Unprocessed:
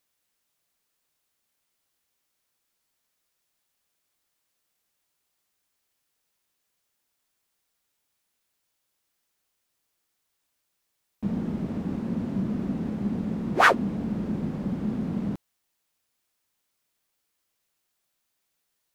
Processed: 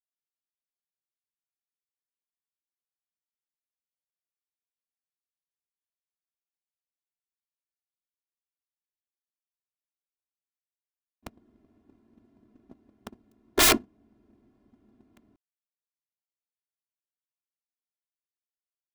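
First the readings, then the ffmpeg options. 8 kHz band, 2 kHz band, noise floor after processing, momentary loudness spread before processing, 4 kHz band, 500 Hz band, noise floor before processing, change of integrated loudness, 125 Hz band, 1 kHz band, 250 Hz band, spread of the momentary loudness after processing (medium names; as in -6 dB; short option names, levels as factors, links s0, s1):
+17.0 dB, -5.5 dB, under -85 dBFS, 11 LU, +8.5 dB, -4.0 dB, -78 dBFS, +6.0 dB, -17.5 dB, -8.0 dB, -12.5 dB, 10 LU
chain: -af "aeval=exprs='(mod(7.94*val(0)+1,2)-1)/7.94':c=same,aecho=1:1:2.9:0.95,agate=range=0.0158:threshold=0.0708:ratio=16:detection=peak,volume=1.33"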